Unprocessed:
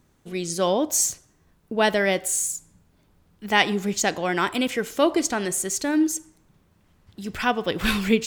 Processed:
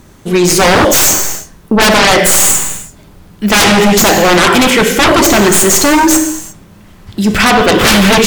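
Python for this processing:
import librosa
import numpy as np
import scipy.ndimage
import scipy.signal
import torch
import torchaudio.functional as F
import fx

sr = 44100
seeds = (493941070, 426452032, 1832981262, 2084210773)

y = fx.tracing_dist(x, sr, depth_ms=0.068)
y = fx.rev_gated(y, sr, seeds[0], gate_ms=380, shape='falling', drr_db=5.5)
y = fx.fold_sine(y, sr, drive_db=19, ceiling_db=-2.5)
y = F.gain(torch.from_numpy(y), -1.5).numpy()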